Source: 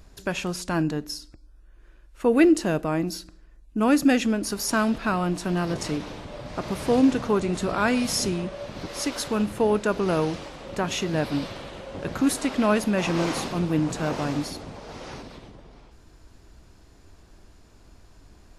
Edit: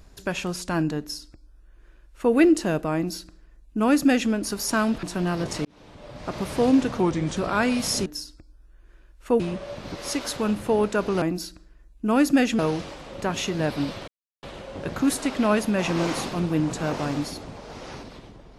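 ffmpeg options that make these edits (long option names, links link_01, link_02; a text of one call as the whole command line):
ffmpeg -i in.wav -filter_complex "[0:a]asplit=10[link_01][link_02][link_03][link_04][link_05][link_06][link_07][link_08][link_09][link_10];[link_01]atrim=end=5.032[link_11];[link_02]atrim=start=5.328:end=5.95,asetpts=PTS-STARTPTS,afade=type=out:start_time=0.618:duration=0.004:curve=hsin[link_12];[link_03]atrim=start=5.95:end=7.304,asetpts=PTS-STARTPTS,afade=type=in:duration=0.7[link_13];[link_04]atrim=start=7.3:end=7.62,asetpts=PTS-STARTPTS,asetrate=38367,aresample=44100[link_14];[link_05]atrim=start=7.616:end=8.312[link_15];[link_06]atrim=start=0.998:end=2.342[link_16];[link_07]atrim=start=8.308:end=10.132[link_17];[link_08]atrim=start=2.938:end=4.312[link_18];[link_09]atrim=start=10.128:end=11.62,asetpts=PTS-STARTPTS,afade=type=out:start_time=1.488:duration=0.004:curve=hsin,apad=pad_dur=0.35[link_19];[link_10]atrim=start=11.62,asetpts=PTS-STARTPTS,afade=type=in:duration=0.004:curve=hsin[link_20];[link_12][link_13]concat=n=2:v=0:a=1[link_21];[link_11][link_21]acrossfade=duration=0.004:curve1=hsin:curve2=hsin[link_22];[link_22][link_14]acrossfade=duration=0.004:curve1=hsin:curve2=hsin[link_23];[link_23][link_15]acrossfade=duration=0.004:curve1=hsin:curve2=hsin[link_24];[link_24][link_16]acrossfade=duration=0.004:curve1=hsin:curve2=hsin[link_25];[link_25][link_17]acrossfade=duration=0.004:curve1=hsin:curve2=hsin[link_26];[link_26][link_18]acrossfade=duration=0.004:curve1=hsin:curve2=hsin[link_27];[link_19][link_20]concat=n=2:v=0:a=1[link_28];[link_27][link_28]acrossfade=duration=0.004:curve1=hsin:curve2=hsin" out.wav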